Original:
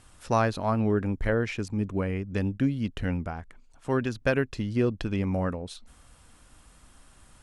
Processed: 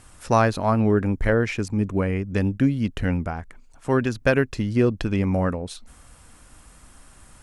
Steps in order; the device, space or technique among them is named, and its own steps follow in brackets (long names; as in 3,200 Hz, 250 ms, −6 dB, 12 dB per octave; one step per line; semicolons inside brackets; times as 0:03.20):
exciter from parts (in parallel at −10 dB: high-pass filter 2,400 Hz 12 dB per octave + soft clipping −33 dBFS, distortion −11 dB + high-pass filter 2,300 Hz 24 dB per octave)
on the sum: level +5.5 dB